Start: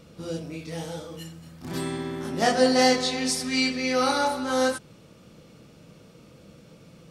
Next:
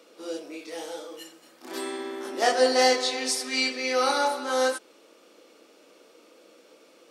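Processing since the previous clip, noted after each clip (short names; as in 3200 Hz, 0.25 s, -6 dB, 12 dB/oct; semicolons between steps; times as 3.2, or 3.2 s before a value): steep high-pass 300 Hz 36 dB/oct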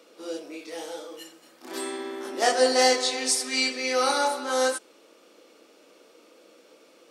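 dynamic EQ 8200 Hz, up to +6 dB, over -46 dBFS, Q 1.4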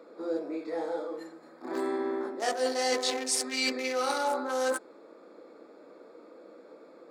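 Wiener smoothing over 15 samples; reverse; compressor 8:1, threshold -31 dBFS, peak gain reduction 15 dB; reverse; gain +5 dB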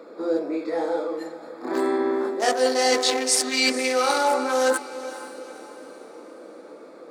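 diffused feedback echo 0.472 s, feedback 46%, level -14 dB; gain +8 dB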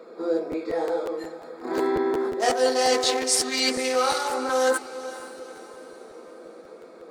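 notch comb 290 Hz; crackling interface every 0.18 s, samples 512, repeat, from 0.51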